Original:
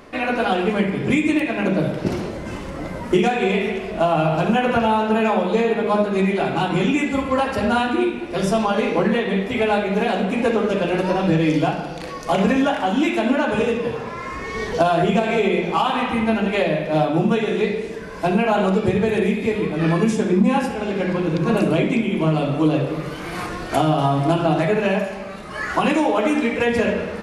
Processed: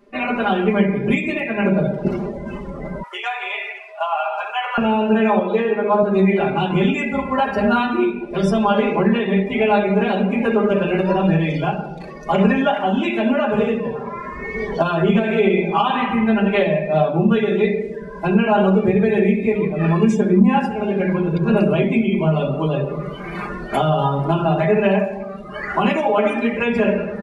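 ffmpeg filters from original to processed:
-filter_complex "[0:a]asettb=1/sr,asplit=3[s0][s1][s2];[s0]atrim=end=3.034[s3];[s1]atrim=start=3.03:end=4.78,asetpts=PTS-STARTPTS,afade=t=in:d=0.004:c=qsin,afade=t=out:st=1.746:d=0.004:c=qsin,highpass=f=750:w=0.5412,highpass=f=750:w=1.3066[s4];[s2]atrim=start=4.776[s5];[s3][s4]acrossfade=d=0.004:c1=hsin:c2=qsin[s6];[s6][s5]acrossfade=d=0.004:c1=qsin:c2=hsin,asettb=1/sr,asplit=3[s7][s8][s9];[s7]atrim=end=5.394[s10];[s8]atrim=start=5.39:end=6.03,asetpts=PTS-STARTPTS,afade=t=in:d=0.004:c=qsin,afade=t=out:st=0.636:d=0.004:c=qsin,highpass=270,lowpass=5800[s11];[s9]atrim=start=6.026[s12];[s10][s11]acrossfade=d=0.004:c1=hsin:c2=qsin[s13];[s13][s12]acrossfade=d=0.004:c1=qsin:c2=hsin,afftdn=nr=17:nf=-33,aecho=1:1:5:0.83,volume=0.891"

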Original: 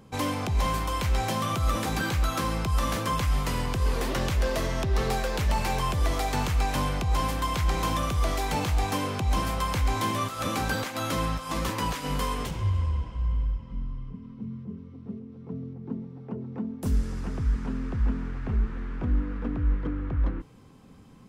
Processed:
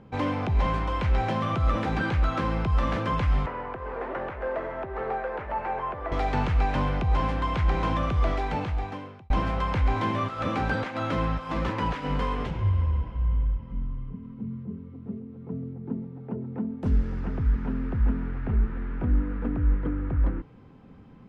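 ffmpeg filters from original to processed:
-filter_complex "[0:a]asettb=1/sr,asplit=3[s0][s1][s2];[s0]atrim=end=3.464[s3];[s1]atrim=start=3.46:end=6.12,asetpts=PTS-STARTPTS,afade=t=in:d=0.004:c=qsin,afade=t=out:st=2.656:d=0.004:c=qsin,acrossover=split=370 2000:gain=0.126 1 0.0708[s4][s5][s6];[s4][s5][s6]amix=inputs=3:normalize=0[s7];[s2]atrim=start=6.116[s8];[s3][s7]acrossfade=d=0.004:c1=hsin:c2=qsin[s9];[s9][s8]acrossfade=d=0.004:c1=qsin:c2=hsin,asplit=2[s10][s11];[s10]atrim=end=9.3,asetpts=PTS-STARTPTS,afade=t=out:st=8.28:d=1.02[s12];[s11]atrim=start=9.3,asetpts=PTS-STARTPTS,afade=t=in:d=0.004:c=hsin[s13];[s12][s13]concat=n=2:v=0:a=1,lowpass=2300,bandreject=f=1100:w=13,volume=1.26"

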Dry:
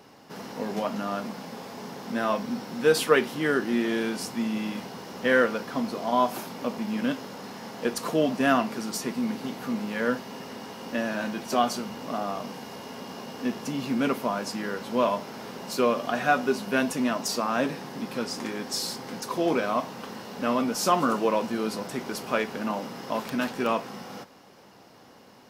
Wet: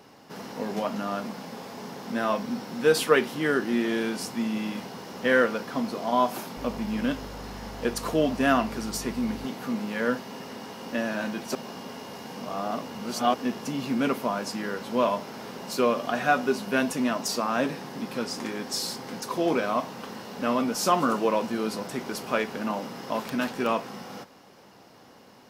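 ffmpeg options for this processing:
-filter_complex "[0:a]asettb=1/sr,asplit=3[s0][s1][s2];[s0]atrim=end=6.574[s3];[s1]atrim=start=6.57:end=9.45,asetpts=PTS-STARTPTS,afade=t=in:d=0.004:c=qsin,afade=t=out:st=2.876:d=0.004:c=qsin,aeval=exprs='val(0)+0.00891*(sin(2*PI*50*n/s)+sin(2*PI*2*50*n/s)/2+sin(2*PI*3*50*n/s)/3+sin(2*PI*4*50*n/s)/4+sin(2*PI*5*50*n/s)/5)':c=same[s4];[s2]atrim=start=9.446[s5];[s3][s4]acrossfade=d=0.004:c1=hsin:c2=qsin[s6];[s6][s5]acrossfade=d=0.004:c1=qsin:c2=hsin,asplit=3[s7][s8][s9];[s7]atrim=end=11.552[s10];[s8]atrim=start=11.548:end=13.342,asetpts=PTS-STARTPTS,areverse[s11];[s9]atrim=start=13.338[s12];[s10][s11]acrossfade=d=0.004:c1=hsin:c2=hsin[s13];[s13][s12]acrossfade=d=0.004:c1=hsin:c2=hsin"

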